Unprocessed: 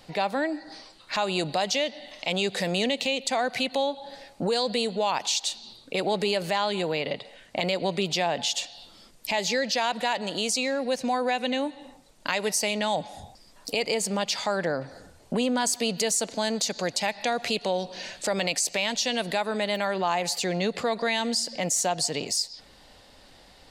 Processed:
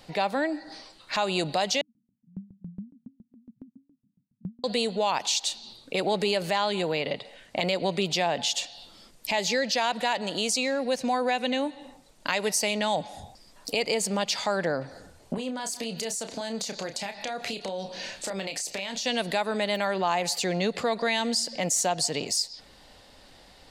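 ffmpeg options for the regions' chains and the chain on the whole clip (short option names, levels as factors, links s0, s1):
-filter_complex "[0:a]asettb=1/sr,asplit=3[s0][s1][s2];[s0]atrim=end=1.814[s3];[s1]atrim=start=1.81:end=4.64,asetpts=PTS-STARTPTS,afade=t=in:d=0.004:c=qsin,afade=t=out:st=2.826:d=0.004:c=qsin,asuperpass=centerf=160:order=12:qfactor=1.2,aeval=exprs='val(0)*pow(10,-27*if(lt(mod(7.2*n/s,1),2*abs(7.2)/1000),1-mod(7.2*n/s,1)/(2*abs(7.2)/1000),(mod(7.2*n/s,1)-2*abs(7.2)/1000)/(1-2*abs(7.2)/1000))/20)':c=same[s4];[s2]atrim=start=4.636[s5];[s3][s4]acrossfade=d=0.004:c1=hsin:c2=qsin[s6];[s6][s5]acrossfade=d=0.004:c1=qsin:c2=hsin,asettb=1/sr,asplit=3[s7][s8][s9];[s7]atrim=end=15.344[s10];[s8]atrim=start=15.34:end=19.06,asetpts=PTS-STARTPTS,afade=t=in:d=0.004:c=qsin,afade=t=out:st=3.716:d=0.004:c=qsin,acompressor=threshold=0.0355:ratio=6:attack=3.2:release=140:knee=1:detection=peak,asplit=2[s11][s12];[s12]adelay=31,volume=0.398[s13];[s11][s13]amix=inputs=2:normalize=0,atrim=end_sample=164052[s14];[s9]atrim=start=19.056[s15];[s10][s14]acrossfade=d=0.004:c1=hsin:c2=qsin[s16];[s16][s15]acrossfade=d=0.004:c1=qsin:c2=hsin"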